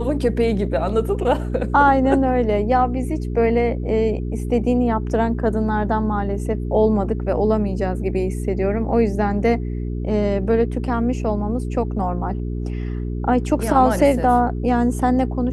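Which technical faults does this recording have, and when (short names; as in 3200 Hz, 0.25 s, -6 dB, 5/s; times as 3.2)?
hum 60 Hz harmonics 7 -25 dBFS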